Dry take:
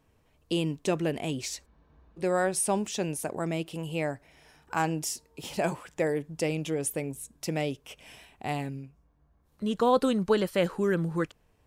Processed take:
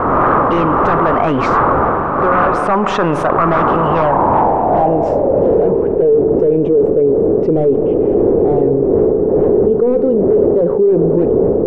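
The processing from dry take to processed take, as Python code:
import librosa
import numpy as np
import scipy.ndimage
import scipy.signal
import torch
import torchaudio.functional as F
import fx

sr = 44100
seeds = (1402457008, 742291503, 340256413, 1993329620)

y = fx.dmg_wind(x, sr, seeds[0], corner_hz=420.0, level_db=-30.0)
y = scipy.signal.sosfilt(scipy.signal.butter(2, 11000.0, 'lowpass', fs=sr, output='sos'), y)
y = fx.low_shelf(y, sr, hz=360.0, db=-12.0)
y = fx.rider(y, sr, range_db=5, speed_s=0.5)
y = fx.fold_sine(y, sr, drive_db=15, ceiling_db=-13.0)
y = fx.filter_sweep_lowpass(y, sr, from_hz=1200.0, to_hz=430.0, start_s=3.78, end_s=5.77, q=5.4)
y = fx.rev_spring(y, sr, rt60_s=2.2, pass_ms=(41,), chirp_ms=25, drr_db=13.5)
y = fx.env_flatten(y, sr, amount_pct=70)
y = F.gain(torch.from_numpy(y), -6.5).numpy()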